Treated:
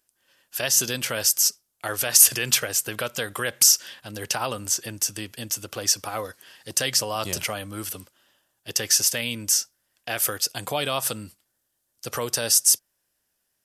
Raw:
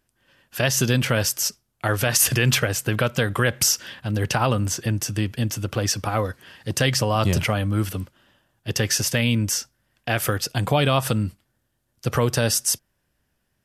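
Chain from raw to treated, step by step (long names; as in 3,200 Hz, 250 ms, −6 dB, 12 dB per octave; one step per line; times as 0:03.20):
bass and treble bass −12 dB, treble +11 dB
level −5.5 dB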